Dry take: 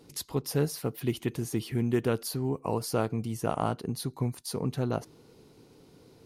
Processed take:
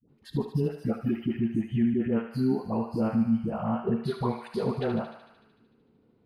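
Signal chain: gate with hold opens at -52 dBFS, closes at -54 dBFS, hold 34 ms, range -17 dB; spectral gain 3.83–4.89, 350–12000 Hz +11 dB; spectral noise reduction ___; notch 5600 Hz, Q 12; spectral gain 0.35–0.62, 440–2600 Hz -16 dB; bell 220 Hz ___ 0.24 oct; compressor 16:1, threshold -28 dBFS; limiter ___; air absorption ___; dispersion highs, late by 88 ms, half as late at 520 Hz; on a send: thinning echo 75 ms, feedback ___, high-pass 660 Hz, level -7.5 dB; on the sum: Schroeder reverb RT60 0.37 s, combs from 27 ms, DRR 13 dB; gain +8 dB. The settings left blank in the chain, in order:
18 dB, +13 dB, -25 dBFS, 460 m, 74%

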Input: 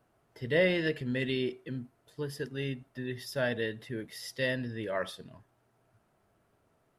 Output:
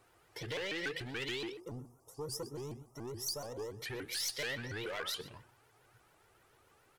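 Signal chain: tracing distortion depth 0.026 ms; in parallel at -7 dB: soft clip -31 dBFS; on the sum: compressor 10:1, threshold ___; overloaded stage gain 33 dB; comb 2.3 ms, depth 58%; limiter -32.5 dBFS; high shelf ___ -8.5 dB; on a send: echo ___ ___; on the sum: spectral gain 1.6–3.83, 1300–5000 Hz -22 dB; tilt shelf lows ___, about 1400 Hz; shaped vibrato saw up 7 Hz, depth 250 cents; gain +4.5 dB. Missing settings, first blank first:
-32 dBFS, 2900 Hz, 0.124 s, -18 dB, -9 dB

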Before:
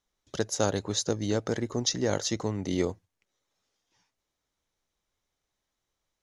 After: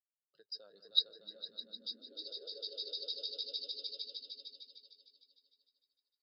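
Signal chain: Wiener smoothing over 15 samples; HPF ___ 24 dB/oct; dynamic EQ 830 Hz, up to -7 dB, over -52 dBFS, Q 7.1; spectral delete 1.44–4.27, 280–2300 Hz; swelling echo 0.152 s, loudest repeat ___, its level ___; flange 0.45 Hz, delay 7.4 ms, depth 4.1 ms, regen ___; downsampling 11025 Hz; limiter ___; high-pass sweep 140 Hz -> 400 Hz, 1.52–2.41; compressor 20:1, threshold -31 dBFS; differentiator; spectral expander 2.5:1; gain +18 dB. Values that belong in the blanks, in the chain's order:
64 Hz, 5, -4 dB, -59%, -24.5 dBFS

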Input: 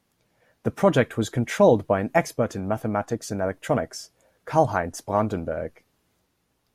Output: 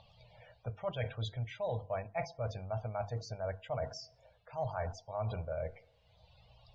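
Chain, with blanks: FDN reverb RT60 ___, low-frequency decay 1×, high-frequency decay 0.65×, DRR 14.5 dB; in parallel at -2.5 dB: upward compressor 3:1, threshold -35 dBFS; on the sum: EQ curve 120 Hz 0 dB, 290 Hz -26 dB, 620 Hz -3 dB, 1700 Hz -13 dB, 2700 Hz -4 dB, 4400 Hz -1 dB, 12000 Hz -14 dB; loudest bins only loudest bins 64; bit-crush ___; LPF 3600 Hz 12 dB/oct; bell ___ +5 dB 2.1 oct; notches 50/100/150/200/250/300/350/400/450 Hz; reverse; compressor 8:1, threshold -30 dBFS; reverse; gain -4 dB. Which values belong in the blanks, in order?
0.66 s, 12-bit, 2700 Hz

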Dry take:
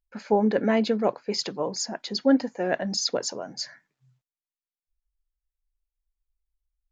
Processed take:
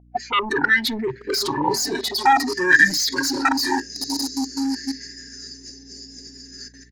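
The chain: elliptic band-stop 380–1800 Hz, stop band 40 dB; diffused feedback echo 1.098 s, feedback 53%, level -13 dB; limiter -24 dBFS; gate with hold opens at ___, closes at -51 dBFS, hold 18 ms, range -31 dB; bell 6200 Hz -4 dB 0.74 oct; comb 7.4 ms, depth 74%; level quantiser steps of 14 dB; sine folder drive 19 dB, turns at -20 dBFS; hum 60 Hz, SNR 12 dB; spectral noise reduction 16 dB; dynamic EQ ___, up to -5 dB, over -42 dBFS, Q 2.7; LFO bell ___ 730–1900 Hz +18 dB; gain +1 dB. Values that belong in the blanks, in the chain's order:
-44 dBFS, 180 Hz, 0.5 Hz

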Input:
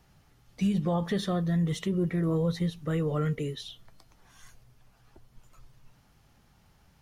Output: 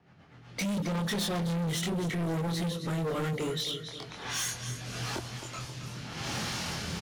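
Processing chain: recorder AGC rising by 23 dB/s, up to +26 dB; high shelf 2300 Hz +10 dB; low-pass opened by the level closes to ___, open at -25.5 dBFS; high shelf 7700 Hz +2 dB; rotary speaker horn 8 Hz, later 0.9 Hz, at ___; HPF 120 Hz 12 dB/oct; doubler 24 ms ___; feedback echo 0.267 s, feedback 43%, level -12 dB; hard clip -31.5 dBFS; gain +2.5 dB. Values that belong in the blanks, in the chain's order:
1700 Hz, 2.31, -2.5 dB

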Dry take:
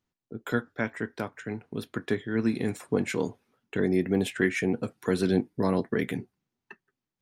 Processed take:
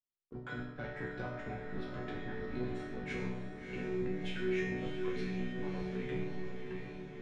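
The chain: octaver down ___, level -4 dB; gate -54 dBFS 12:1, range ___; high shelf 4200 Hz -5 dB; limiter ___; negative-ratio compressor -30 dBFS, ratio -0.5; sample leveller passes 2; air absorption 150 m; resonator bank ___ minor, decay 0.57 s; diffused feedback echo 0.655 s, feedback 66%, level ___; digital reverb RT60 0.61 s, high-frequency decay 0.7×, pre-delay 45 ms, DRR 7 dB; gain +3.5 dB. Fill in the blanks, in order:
2 oct, -8 dB, -17.5 dBFS, B2, -6 dB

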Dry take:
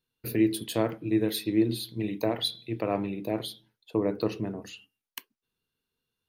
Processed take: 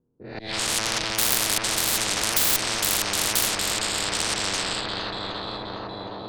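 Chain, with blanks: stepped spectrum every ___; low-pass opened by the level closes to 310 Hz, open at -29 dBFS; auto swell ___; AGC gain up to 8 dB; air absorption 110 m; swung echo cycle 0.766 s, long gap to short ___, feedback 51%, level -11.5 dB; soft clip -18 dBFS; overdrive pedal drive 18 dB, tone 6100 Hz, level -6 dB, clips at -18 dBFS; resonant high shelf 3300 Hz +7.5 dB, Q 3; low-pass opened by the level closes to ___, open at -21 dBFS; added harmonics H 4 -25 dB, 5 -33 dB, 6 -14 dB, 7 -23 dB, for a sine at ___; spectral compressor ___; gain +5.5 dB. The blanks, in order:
0.2 s, 0.62 s, 1.5:1, 1100 Hz, -7.5 dBFS, 10:1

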